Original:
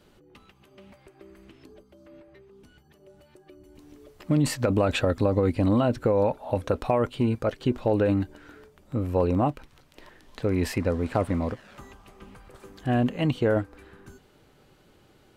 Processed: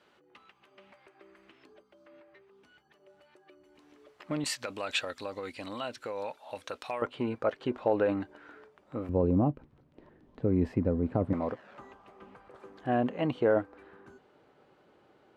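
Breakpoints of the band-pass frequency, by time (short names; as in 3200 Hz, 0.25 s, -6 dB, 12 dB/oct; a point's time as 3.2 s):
band-pass, Q 0.63
1500 Hz
from 4.44 s 4200 Hz
from 7.02 s 1000 Hz
from 9.09 s 200 Hz
from 11.33 s 740 Hz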